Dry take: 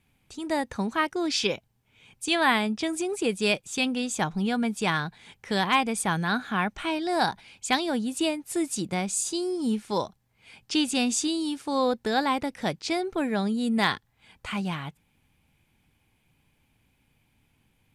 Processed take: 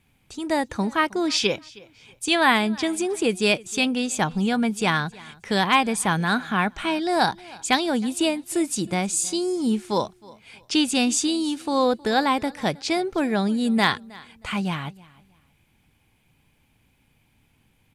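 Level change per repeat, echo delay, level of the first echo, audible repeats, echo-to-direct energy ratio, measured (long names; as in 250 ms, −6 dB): −11.5 dB, 316 ms, −22.5 dB, 2, −22.0 dB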